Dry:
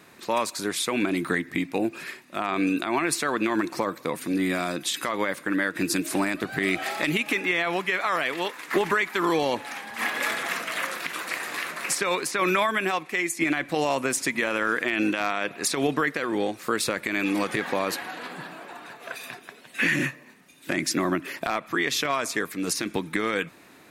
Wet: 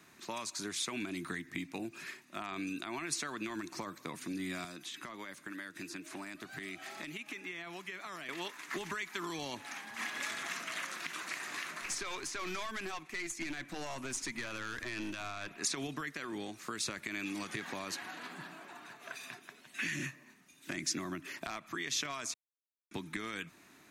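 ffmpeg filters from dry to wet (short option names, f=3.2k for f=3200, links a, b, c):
-filter_complex "[0:a]asettb=1/sr,asplit=3[a][b][c];[a]atrim=end=4.644[d];[b]atrim=start=4.64:end=8.29,asetpts=PTS-STARTPTS,afade=t=in:d=0.004:c=qsin,afade=t=out:st=3.646:d=0.004:c=qsin,acrossover=split=420|3300[e][f][g];[e]acompressor=threshold=-41dB:ratio=4[h];[f]acompressor=threshold=-37dB:ratio=4[i];[g]acompressor=threshold=-45dB:ratio=4[j];[h][i][j]amix=inputs=3:normalize=0[k];[c]atrim=start=8.286[l];[d][k]acrossfade=d=0.004:c1=hsin:c2=qsin[m];[m][l]acrossfade=d=0.004:c1=qsin:c2=hsin,asettb=1/sr,asplit=3[n][o][p];[n]atrim=end=11.814[q];[o]atrim=start=11.81:end=15.58,asetpts=PTS-STARTPTS,afade=t=in:d=0.004:c=qsin,afade=t=out:st=3.766:d=0.004:c=qsin,aeval=exprs='(tanh(14.1*val(0)+0.4)-tanh(0.4))/14.1':c=same[r];[p]atrim=start=15.576[s];[q][r]acrossfade=d=0.004:c1=hsin:c2=qsin[t];[t][s]acrossfade=d=0.004:c1=qsin:c2=hsin,asplit=3[u][v][w];[u]atrim=end=22.34,asetpts=PTS-STARTPTS,afade=t=out:st=22.336:d=0.004:c=hsin[x];[v]atrim=start=22.34:end=22.91,asetpts=PTS-STARTPTS,volume=0[y];[w]atrim=start=22.91,asetpts=PTS-STARTPTS,afade=t=in:d=0.004:c=hsin[z];[x][y][z]concat=n=3:v=0:a=1,acrossover=split=9900[aa][ab];[ab]acompressor=threshold=-55dB:ratio=4:attack=1:release=60[ac];[aa][ac]amix=inputs=2:normalize=0,equalizer=f=500:t=o:w=0.33:g=-11,equalizer=f=800:t=o:w=0.33:g=-3,equalizer=f=6.3k:t=o:w=0.33:g=6,acrossover=split=140|3000[ad][ae][af];[ae]acompressor=threshold=-30dB:ratio=6[ag];[ad][ag][af]amix=inputs=3:normalize=0,volume=-8dB"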